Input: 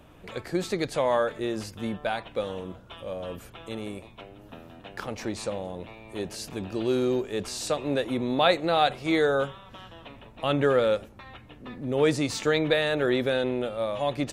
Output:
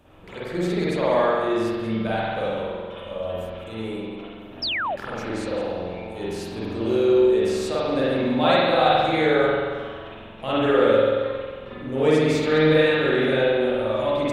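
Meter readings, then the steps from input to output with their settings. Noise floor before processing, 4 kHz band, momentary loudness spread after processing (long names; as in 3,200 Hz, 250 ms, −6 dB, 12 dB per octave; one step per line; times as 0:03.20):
−50 dBFS, +3.5 dB, 15 LU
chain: delay that plays each chunk backwards 104 ms, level −13 dB
spring reverb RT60 1.7 s, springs 45 ms, chirp 25 ms, DRR −9 dB
sound drawn into the spectrogram fall, 0:04.62–0:04.96, 530–5,600 Hz −21 dBFS
level −4.5 dB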